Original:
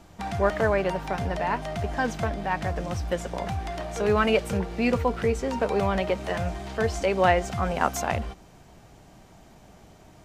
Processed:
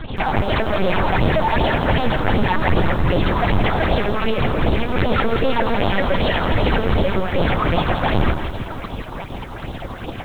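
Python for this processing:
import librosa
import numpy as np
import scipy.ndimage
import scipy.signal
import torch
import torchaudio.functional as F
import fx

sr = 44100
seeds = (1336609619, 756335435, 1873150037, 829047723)

y = fx.tilt_eq(x, sr, slope=2.0, at=(4.9, 6.5))
y = fx.over_compress(y, sr, threshold_db=-28.0, ratio=-0.5)
y = fx.fuzz(y, sr, gain_db=44.0, gate_db=-46.0)
y = fx.phaser_stages(y, sr, stages=6, low_hz=150.0, high_hz=1900.0, hz=2.6, feedback_pct=30)
y = fx.tube_stage(y, sr, drive_db=14.0, bias=0.4)
y = fx.lpc_vocoder(y, sr, seeds[0], excitation='pitch_kept', order=8)
y = fx.echo_crushed(y, sr, ms=166, feedback_pct=55, bits=8, wet_db=-9)
y = y * 10.0 ** (2.0 / 20.0)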